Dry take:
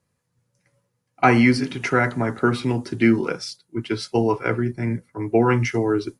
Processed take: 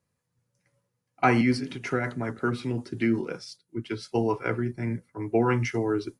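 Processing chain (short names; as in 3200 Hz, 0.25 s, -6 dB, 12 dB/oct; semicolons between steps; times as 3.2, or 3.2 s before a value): 1.41–4.11 rotary speaker horn 5.5 Hz; gain -5.5 dB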